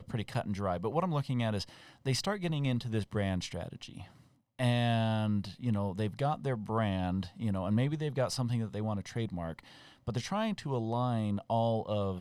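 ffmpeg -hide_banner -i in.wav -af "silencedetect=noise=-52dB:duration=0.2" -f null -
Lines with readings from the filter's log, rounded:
silence_start: 4.22
silence_end: 4.59 | silence_duration: 0.37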